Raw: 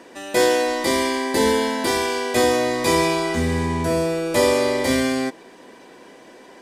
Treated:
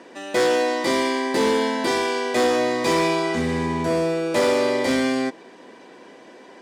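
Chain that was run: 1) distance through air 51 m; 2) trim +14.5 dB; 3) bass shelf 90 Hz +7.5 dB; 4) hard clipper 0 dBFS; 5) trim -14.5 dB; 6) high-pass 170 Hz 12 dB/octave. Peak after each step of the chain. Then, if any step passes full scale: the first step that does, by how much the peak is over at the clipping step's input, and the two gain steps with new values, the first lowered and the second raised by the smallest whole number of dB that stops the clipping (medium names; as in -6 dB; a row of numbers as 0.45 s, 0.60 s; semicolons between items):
-5.5 dBFS, +9.0 dBFS, +8.5 dBFS, 0.0 dBFS, -14.5 dBFS, -9.5 dBFS; step 2, 8.5 dB; step 2 +5.5 dB, step 5 -5.5 dB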